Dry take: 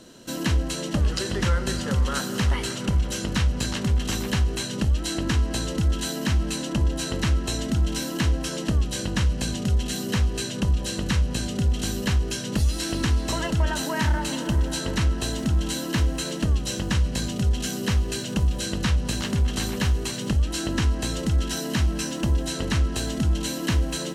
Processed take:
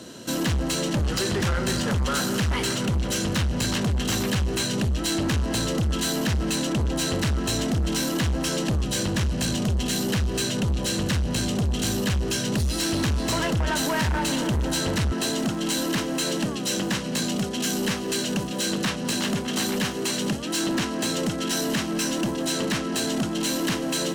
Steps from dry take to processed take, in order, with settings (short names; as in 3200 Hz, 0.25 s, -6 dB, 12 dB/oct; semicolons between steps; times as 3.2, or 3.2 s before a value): HPF 70 Hz 24 dB/oct, from 15.12 s 170 Hz; soft clip -27.5 dBFS, distortion -9 dB; gain +7 dB